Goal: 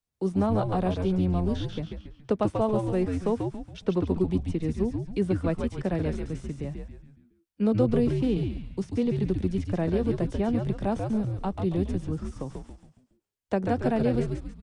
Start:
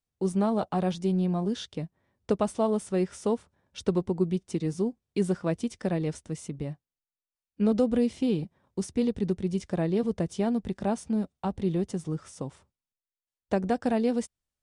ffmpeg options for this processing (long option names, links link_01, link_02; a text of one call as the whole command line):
ffmpeg -i in.wav -filter_complex "[0:a]acrossover=split=230|470|3800[link_01][link_02][link_03][link_04];[link_04]acompressor=threshold=-58dB:ratio=10[link_05];[link_01][link_02][link_03][link_05]amix=inputs=4:normalize=0,asplit=6[link_06][link_07][link_08][link_09][link_10][link_11];[link_07]adelay=139,afreqshift=-97,volume=-4dB[link_12];[link_08]adelay=278,afreqshift=-194,volume=-11.3dB[link_13];[link_09]adelay=417,afreqshift=-291,volume=-18.7dB[link_14];[link_10]adelay=556,afreqshift=-388,volume=-26dB[link_15];[link_11]adelay=695,afreqshift=-485,volume=-33.3dB[link_16];[link_06][link_12][link_13][link_14][link_15][link_16]amix=inputs=6:normalize=0" out.wav